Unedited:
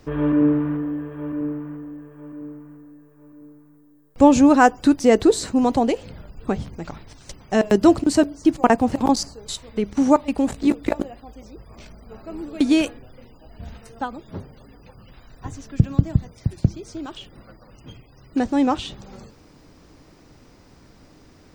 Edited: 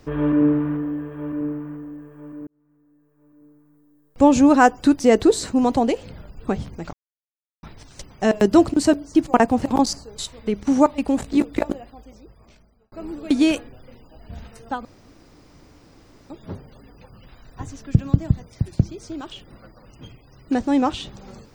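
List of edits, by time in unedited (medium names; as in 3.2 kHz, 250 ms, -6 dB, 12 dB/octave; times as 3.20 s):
2.47–4.55 s: fade in
6.93 s: insert silence 0.70 s
11.02–12.22 s: fade out
14.15 s: insert room tone 1.45 s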